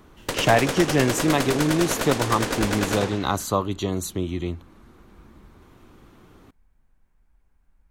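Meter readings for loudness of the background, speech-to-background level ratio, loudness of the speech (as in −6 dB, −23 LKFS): −26.5 LKFS, 2.5 dB, −24.0 LKFS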